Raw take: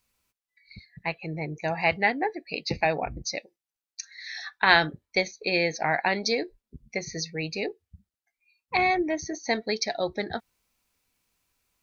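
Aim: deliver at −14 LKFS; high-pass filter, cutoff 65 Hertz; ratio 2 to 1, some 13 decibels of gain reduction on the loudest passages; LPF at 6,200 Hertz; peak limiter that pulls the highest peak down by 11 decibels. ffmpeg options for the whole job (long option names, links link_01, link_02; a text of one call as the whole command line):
ffmpeg -i in.wav -af "highpass=65,lowpass=6200,acompressor=threshold=-37dB:ratio=2,volume=24dB,alimiter=limit=-1dB:level=0:latency=1" out.wav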